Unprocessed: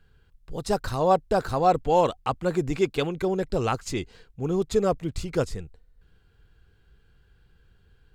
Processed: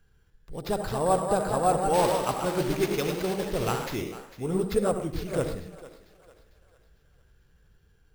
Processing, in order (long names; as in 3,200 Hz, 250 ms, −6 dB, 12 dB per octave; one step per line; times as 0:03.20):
feedback echo with a high-pass in the loop 450 ms, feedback 44%, high-pass 410 Hz, level −15 dB
on a send at −7 dB: convolution reverb RT60 0.45 s, pre-delay 64 ms
on the sum: delay with pitch and tempo change per echo 266 ms, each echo +1 semitone, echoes 3, each echo −6 dB
0:01.93–0:03.86: noise that follows the level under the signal 14 dB
decimation without filtering 5×
level −4 dB